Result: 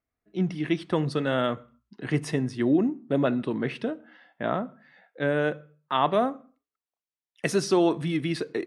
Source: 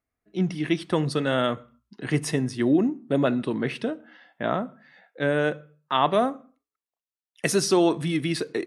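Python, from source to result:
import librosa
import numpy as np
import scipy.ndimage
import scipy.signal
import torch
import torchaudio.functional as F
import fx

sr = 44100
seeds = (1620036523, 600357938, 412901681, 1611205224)

y = fx.lowpass(x, sr, hz=3800.0, slope=6)
y = F.gain(torch.from_numpy(y), -1.5).numpy()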